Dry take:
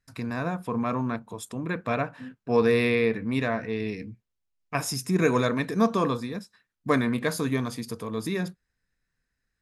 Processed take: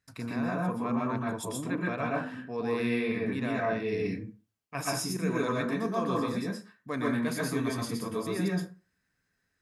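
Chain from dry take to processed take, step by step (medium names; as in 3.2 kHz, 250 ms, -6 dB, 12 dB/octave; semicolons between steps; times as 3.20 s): high-pass 79 Hz; reverse; compression 4:1, threshold -33 dBFS, peak gain reduction 14 dB; reverse; reverberation RT60 0.35 s, pre-delay 112 ms, DRR -3.5 dB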